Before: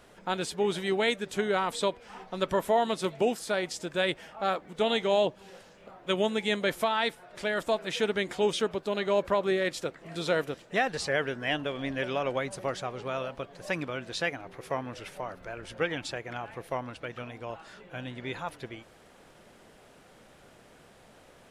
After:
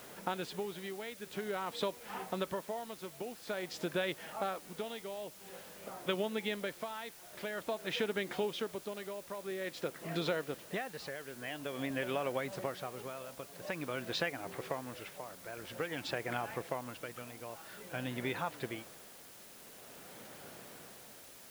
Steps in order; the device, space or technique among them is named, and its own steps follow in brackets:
medium wave at night (band-pass filter 110–4,000 Hz; downward compressor, threshold −35 dBFS, peak gain reduction 14 dB; amplitude tremolo 0.49 Hz, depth 67%; steady tone 10,000 Hz −70 dBFS; white noise bed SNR 15 dB)
level +3.5 dB

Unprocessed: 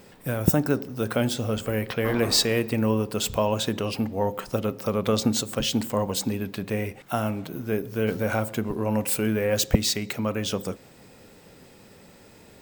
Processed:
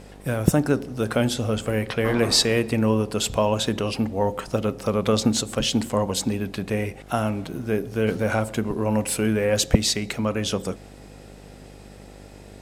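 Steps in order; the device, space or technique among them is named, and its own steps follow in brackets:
video cassette with head-switching buzz (hum with harmonics 50 Hz, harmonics 16, −48 dBFS; white noise bed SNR 40 dB)
low-pass filter 12,000 Hz 24 dB per octave
level +2.5 dB

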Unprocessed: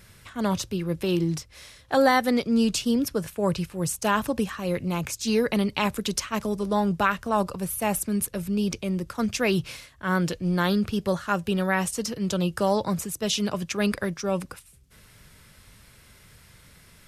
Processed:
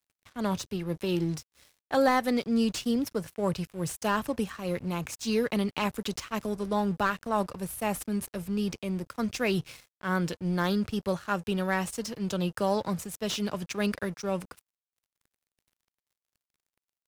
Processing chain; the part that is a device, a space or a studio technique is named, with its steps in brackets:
early transistor amplifier (dead-zone distortion −44 dBFS; slew-rate limiting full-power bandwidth 230 Hz)
level −3.5 dB

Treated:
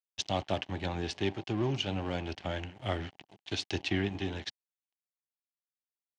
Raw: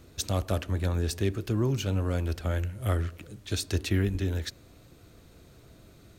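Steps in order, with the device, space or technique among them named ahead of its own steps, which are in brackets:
blown loudspeaker (dead-zone distortion −41 dBFS; loudspeaker in its box 150–5,700 Hz, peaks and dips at 230 Hz −4 dB, 480 Hz −6 dB, 790 Hz +8 dB, 1,300 Hz −6 dB, 2,100 Hz +3 dB, 3,000 Hz +8 dB)

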